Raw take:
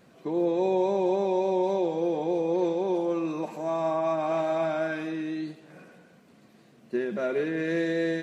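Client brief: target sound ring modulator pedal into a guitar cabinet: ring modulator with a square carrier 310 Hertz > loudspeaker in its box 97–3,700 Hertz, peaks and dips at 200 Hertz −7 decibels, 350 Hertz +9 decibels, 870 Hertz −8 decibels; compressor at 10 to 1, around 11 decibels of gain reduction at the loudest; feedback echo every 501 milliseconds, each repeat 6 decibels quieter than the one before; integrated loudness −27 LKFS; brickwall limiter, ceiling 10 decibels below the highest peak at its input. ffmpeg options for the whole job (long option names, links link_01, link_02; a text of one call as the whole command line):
ffmpeg -i in.wav -af "acompressor=threshold=-33dB:ratio=10,alimiter=level_in=10.5dB:limit=-24dB:level=0:latency=1,volume=-10.5dB,aecho=1:1:501|1002|1503|2004|2505|3006:0.501|0.251|0.125|0.0626|0.0313|0.0157,aeval=exprs='val(0)*sgn(sin(2*PI*310*n/s))':channel_layout=same,highpass=97,equalizer=frequency=200:width_type=q:width=4:gain=-7,equalizer=frequency=350:width_type=q:width=4:gain=9,equalizer=frequency=870:width_type=q:width=4:gain=-8,lowpass=frequency=3700:width=0.5412,lowpass=frequency=3700:width=1.3066,volume=15dB" out.wav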